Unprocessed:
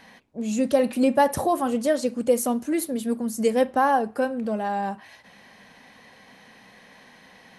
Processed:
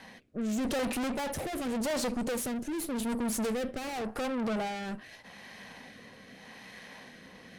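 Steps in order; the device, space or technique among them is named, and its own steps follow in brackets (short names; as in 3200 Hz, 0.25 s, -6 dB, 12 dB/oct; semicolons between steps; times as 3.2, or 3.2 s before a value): overdriven rotary cabinet (tube stage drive 37 dB, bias 0.75; rotary speaker horn 0.85 Hz); gain +8 dB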